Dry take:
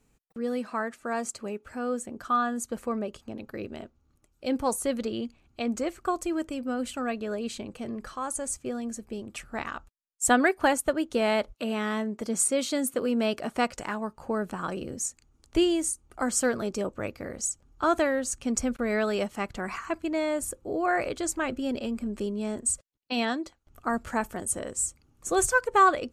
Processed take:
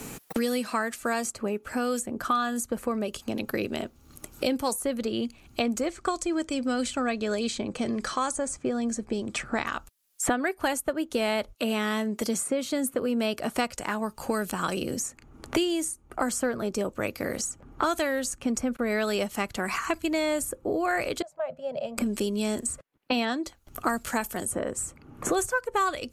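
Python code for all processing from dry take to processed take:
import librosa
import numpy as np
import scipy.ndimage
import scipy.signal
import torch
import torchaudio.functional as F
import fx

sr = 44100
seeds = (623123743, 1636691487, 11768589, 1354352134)

y = fx.chain(x, sr, fx.lowpass(hz=8200.0, slope=24),
    fx.notch(hz=2800.0, q=11.0), at=(5.86, 9.67))
y = fx.chain(y, sr, fx.double_bandpass(hz=310.0, octaves=2.0),
    fx.low_shelf(hz=300.0, db=-11.5), at=(21.22, 21.98))
y = fx.peak_eq(y, sr, hz=12000.0, db=8.0, octaves=0.54)
y = fx.band_squash(y, sr, depth_pct=100)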